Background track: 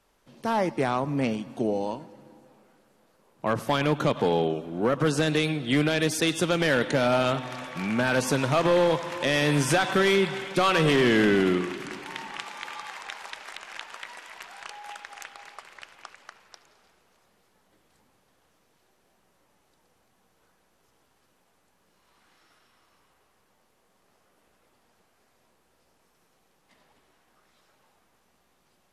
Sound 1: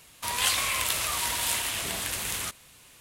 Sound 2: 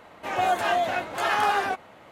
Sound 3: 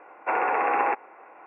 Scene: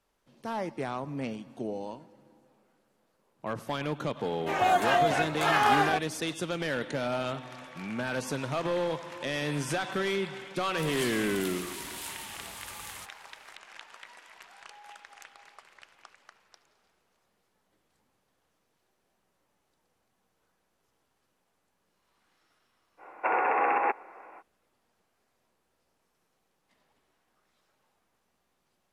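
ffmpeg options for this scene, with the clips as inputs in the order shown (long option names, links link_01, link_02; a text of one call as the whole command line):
ffmpeg -i bed.wav -i cue0.wav -i cue1.wav -i cue2.wav -filter_complex "[0:a]volume=-8.5dB[link_01];[3:a]alimiter=limit=-14dB:level=0:latency=1:release=128[link_02];[2:a]atrim=end=2.11,asetpts=PTS-STARTPTS,volume=-0.5dB,afade=type=in:duration=0.004:curve=hsin,afade=type=out:start_time=2.106:duration=0.004:curve=hsin,adelay=4230[link_03];[1:a]atrim=end=3,asetpts=PTS-STARTPTS,volume=-12.5dB,afade=type=in:duration=0.004:curve=hsin,afade=type=out:start_time=2.996:duration=0.004:curve=hsin,adelay=10550[link_04];[link_02]atrim=end=1.46,asetpts=PTS-STARTPTS,volume=-0.5dB,afade=type=in:duration=0.05,afade=type=out:start_time=1.41:duration=0.05,adelay=22970[link_05];[link_01][link_03][link_04][link_05]amix=inputs=4:normalize=0" out.wav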